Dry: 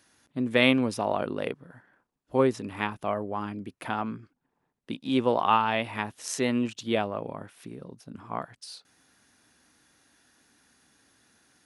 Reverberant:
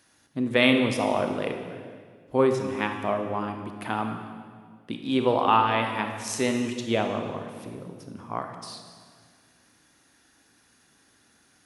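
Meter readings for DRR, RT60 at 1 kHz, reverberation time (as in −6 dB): 4.5 dB, 1.7 s, 1.8 s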